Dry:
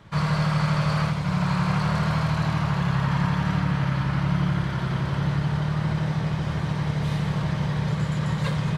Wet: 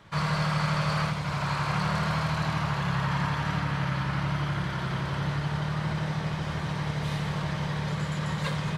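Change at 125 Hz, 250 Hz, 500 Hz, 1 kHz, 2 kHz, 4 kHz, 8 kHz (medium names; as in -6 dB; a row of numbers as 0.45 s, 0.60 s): -5.5 dB, -6.0 dB, -2.5 dB, -1.0 dB, -0.5 dB, 0.0 dB, no reading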